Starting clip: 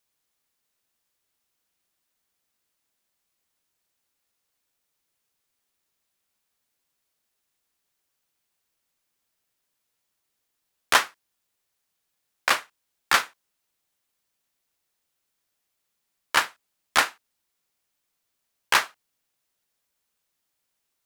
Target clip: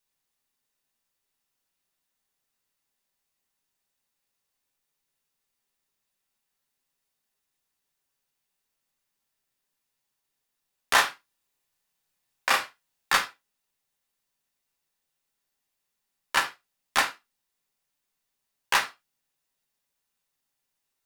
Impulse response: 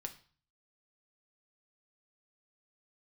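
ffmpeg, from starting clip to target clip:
-filter_complex "[0:a]asettb=1/sr,asplit=3[s0][s1][s2];[s0]atrim=end=10.934[s3];[s1]atrim=start=10.93:end=13.17,asetpts=PTS-STARTPTS,afade=t=in:d=0.004:c=qsin,afade=t=out:st=2.236:d=0.004:c=qsin,asplit=2[s4][s5];[s5]adelay=33,volume=0.794[s6];[s4][s6]amix=inputs=2:normalize=0,atrim=end_sample=98784[s7];[s2]atrim=start=13.166[s8];[s3][s7]acrossfade=d=0.004:c1=hsin:c2=qsin[s9];[s9][s8]acrossfade=d=0.004:c1=qsin:c2=hsin[s10];[1:a]atrim=start_sample=2205,atrim=end_sample=4410[s11];[s10][s11]afir=irnorm=-1:irlink=0"

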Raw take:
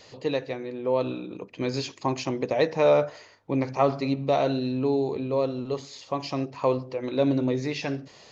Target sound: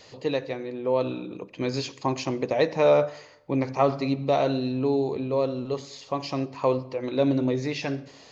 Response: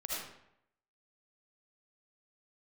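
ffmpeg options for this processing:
-filter_complex "[0:a]asplit=2[s0][s1];[1:a]atrim=start_sample=2205,asetrate=38808,aresample=44100[s2];[s1][s2]afir=irnorm=-1:irlink=0,volume=0.0708[s3];[s0][s3]amix=inputs=2:normalize=0"

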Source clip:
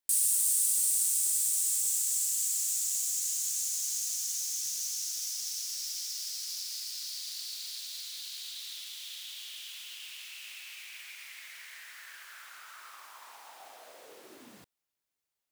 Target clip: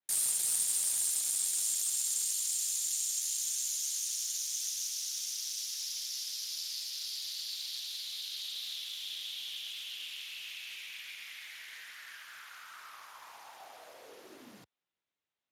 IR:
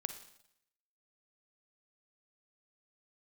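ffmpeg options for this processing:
-af "adynamicequalizer=threshold=0.00178:dfrequency=3400:dqfactor=2.7:tfrequency=3400:tqfactor=2.7:attack=5:release=100:ratio=0.375:range=2.5:mode=boostabove:tftype=bell,asoftclip=type=hard:threshold=0.0708" -ar 32000 -c:a libspeex -b:a 36k

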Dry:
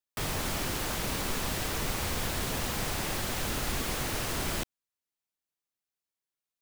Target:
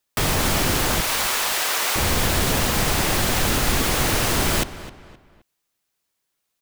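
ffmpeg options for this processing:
-filter_complex "[0:a]asettb=1/sr,asplit=3[s0][s1][s2];[s0]atrim=end=1.014[s3];[s1]atrim=start=1.01:end=1.96,asetpts=PTS-STARTPTS,afade=t=in:d=0.004:c=qsin,afade=t=out:st=0.946:d=0.004:c=qsin,highpass=750[s4];[s2]atrim=start=1.956[s5];[s3][s4]acrossfade=d=0.004:c1=hsin:c2=qsin[s6];[s6][s5]acrossfade=d=0.004:c1=qsin:c2=hsin,asplit=2[s7][s8];[s8]alimiter=level_in=1.58:limit=0.0631:level=0:latency=1:release=264,volume=0.631,volume=1.26[s9];[s7][s9]amix=inputs=2:normalize=0,asplit=2[s10][s11];[s11]adelay=261,lowpass=f=3500:p=1,volume=0.188,asplit=2[s12][s13];[s13]adelay=261,lowpass=f=3500:p=1,volume=0.37,asplit=2[s14][s15];[s15]adelay=261,lowpass=f=3500:p=1,volume=0.37[s16];[s10][s12][s14][s16]amix=inputs=4:normalize=0,volume=2.37"

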